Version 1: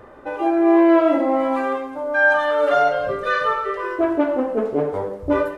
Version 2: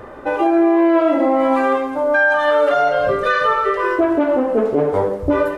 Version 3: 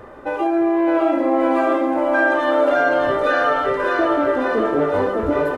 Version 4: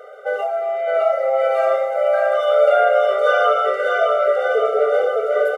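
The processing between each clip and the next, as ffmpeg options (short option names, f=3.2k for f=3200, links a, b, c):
-af "alimiter=limit=-15dB:level=0:latency=1:release=208,volume=8dB"
-af "aecho=1:1:610|1159|1653|2098|2498:0.631|0.398|0.251|0.158|0.1,volume=-4dB"
-af "afftfilt=real='re*eq(mod(floor(b*sr/1024/390),2),1)':imag='im*eq(mod(floor(b*sr/1024/390),2),1)':win_size=1024:overlap=0.75,volume=3.5dB"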